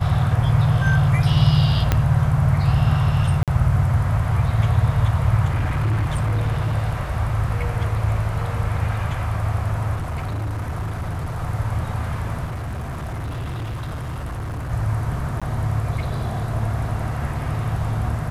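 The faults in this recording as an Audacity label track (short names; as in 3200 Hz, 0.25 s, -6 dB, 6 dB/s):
1.920000	1.920000	pop -4 dBFS
3.430000	3.480000	gap 47 ms
5.450000	6.750000	clipped -17 dBFS
9.960000	11.390000	clipped -22.5 dBFS
12.450000	14.720000	clipped -25 dBFS
15.400000	15.420000	gap 16 ms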